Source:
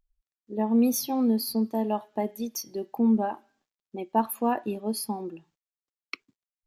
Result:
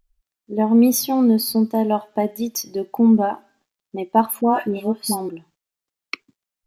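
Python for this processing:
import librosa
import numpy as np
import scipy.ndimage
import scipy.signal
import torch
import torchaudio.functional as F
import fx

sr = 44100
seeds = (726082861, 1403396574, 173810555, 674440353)

y = fx.dispersion(x, sr, late='highs', ms=108.0, hz=1700.0, at=(4.41, 5.29))
y = y * librosa.db_to_amplitude(8.0)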